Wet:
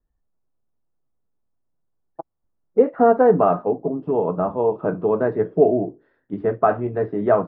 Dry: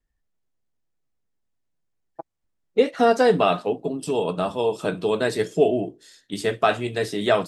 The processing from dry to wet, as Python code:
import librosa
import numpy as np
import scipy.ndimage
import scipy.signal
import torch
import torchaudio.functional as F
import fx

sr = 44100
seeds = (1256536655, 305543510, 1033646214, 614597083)

y = scipy.signal.sosfilt(scipy.signal.butter(4, 1300.0, 'lowpass', fs=sr, output='sos'), x)
y = y * librosa.db_to_amplitude(3.0)